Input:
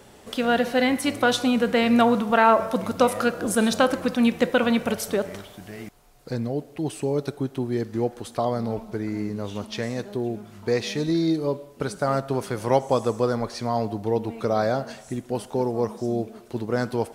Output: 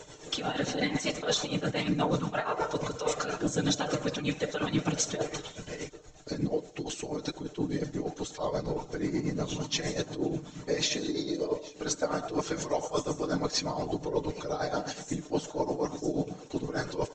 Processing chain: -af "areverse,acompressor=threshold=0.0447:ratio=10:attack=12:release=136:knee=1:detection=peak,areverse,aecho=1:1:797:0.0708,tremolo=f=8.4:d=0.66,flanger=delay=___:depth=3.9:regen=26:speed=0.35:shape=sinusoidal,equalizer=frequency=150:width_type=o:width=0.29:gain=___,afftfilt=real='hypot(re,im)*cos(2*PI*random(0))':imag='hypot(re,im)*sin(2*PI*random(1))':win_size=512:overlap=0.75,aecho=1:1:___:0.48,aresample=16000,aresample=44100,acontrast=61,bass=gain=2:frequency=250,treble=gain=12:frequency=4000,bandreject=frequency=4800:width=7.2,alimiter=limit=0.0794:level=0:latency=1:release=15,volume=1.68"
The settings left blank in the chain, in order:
2, -14.5, 6.6